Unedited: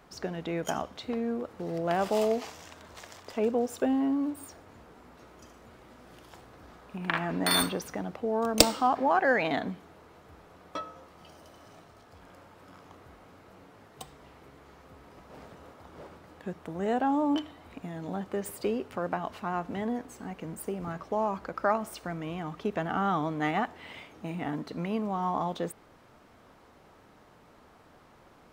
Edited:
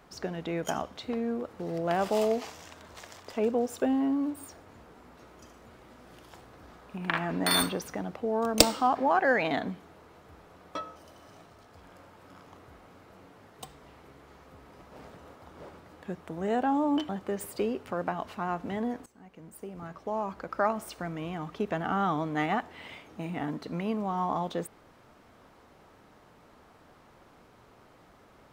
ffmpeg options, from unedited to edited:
-filter_complex "[0:a]asplit=4[a][b][c][d];[a]atrim=end=10.962[e];[b]atrim=start=11.338:end=17.472[f];[c]atrim=start=18.138:end=20.11,asetpts=PTS-STARTPTS,afade=t=out:st=1.968:d=0.004:c=hsin:silence=0.125893[g];[d]atrim=start=20.11,asetpts=PTS-STARTPTS,afade=t=in:d=1.7:silence=0.125893[h];[e][f]acrossfade=d=0.004:c1=hsin:c2=hsin[i];[g][h]concat=n=2:v=0:a=1[j];[i][j]acrossfade=d=0.004:c1=hsin:c2=hsin"

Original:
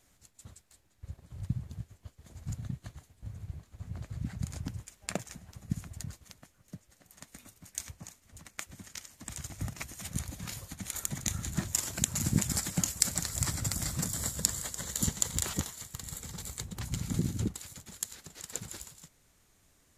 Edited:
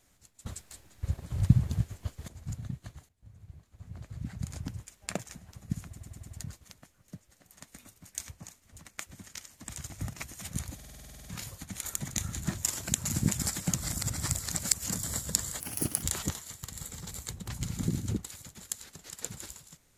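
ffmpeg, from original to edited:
-filter_complex "[0:a]asplit=22[a][b][c][d][e][f][g][h][i][j][k][l][m][n][o][p][q][r][s][t][u][v];[a]atrim=end=0.462[w];[b]atrim=start=0.458:end=2.282,asetpts=PTS-STARTPTS,volume=12dB[x];[c]atrim=start=2.278:end=3.09,asetpts=PTS-STARTPTS,afade=t=out:st=0.808:d=0.004:c=hsin:silence=0.177828[y];[d]atrim=start=3.09:end=5.962,asetpts=PTS-STARTPTS,afade=t=in:d=1.47:silence=0.177828[z];[e]atrim=start=5.858:end=5.962[aa];[f]atrim=start=5.858:end=5.962[ab];[g]atrim=start=5.858:end=5.962[ac];[h]atrim=start=5.858:end=10.402[ad];[i]atrim=start=10.348:end=10.402[ae];[j]atrim=start=10.348:end=10.402[af];[k]atrim=start=10.348:end=10.402[ag];[l]atrim=start=10.348:end=10.402[ah];[m]atrim=start=10.348:end=10.402[ai];[n]atrim=start=10.348:end=10.402[aj];[o]atrim=start=10.348:end=10.402[ak];[p]atrim=start=10.348:end=10.402[al];[q]atrim=start=10.348:end=10.402[am];[r]atrim=start=10.348:end=12.842[an];[s]atrim=start=12.838:end=14.002,asetpts=PTS-STARTPTS,areverse[ao];[t]atrim=start=13.998:end=14.704[ap];[u]atrim=start=14.7:end=15.34,asetpts=PTS-STARTPTS,asetrate=65709,aresample=44100,atrim=end_sample=18942,asetpts=PTS-STARTPTS[aq];[v]atrim=start=15.336[ar];[w][x]acrossfade=d=0.004:c1=hsin:c2=hsin[as];[y][z]concat=n=2:v=0:a=1[at];[as][at]acrossfade=d=0.004:c1=hsin:c2=hsin[au];[au][aa]acrossfade=d=0.004:c1=hsin:c2=hsin[av];[av][ab]acrossfade=d=0.004:c1=hsin:c2=hsin[aw];[aw][ac]acrossfade=d=0.004:c1=hsin:c2=hsin[ax];[ax][ad]acrossfade=d=0.004:c1=hsin:c2=hsin[ay];[ay][ae]acrossfade=d=0.004:c1=hsin:c2=hsin[az];[az][af]acrossfade=d=0.004:c1=hsin:c2=hsin[ba];[ba][ag]acrossfade=d=0.004:c1=hsin:c2=hsin[bb];[bb][ah]acrossfade=d=0.004:c1=hsin:c2=hsin[bc];[bc][ai]acrossfade=d=0.004:c1=hsin:c2=hsin[bd];[bd][aj]acrossfade=d=0.004:c1=hsin:c2=hsin[be];[be][ak]acrossfade=d=0.004:c1=hsin:c2=hsin[bf];[bf][al]acrossfade=d=0.004:c1=hsin:c2=hsin[bg];[bg][am]acrossfade=d=0.004:c1=hsin:c2=hsin[bh];[bh][an]acrossfade=d=0.004:c1=hsin:c2=hsin[bi];[bi][ao]acrossfade=d=0.004:c1=hsin:c2=hsin[bj];[bj][ap]acrossfade=d=0.004:c1=hsin:c2=hsin[bk];[bk][aq]acrossfade=d=0.004:c1=hsin:c2=hsin[bl];[bl][ar]acrossfade=d=0.004:c1=hsin:c2=hsin"

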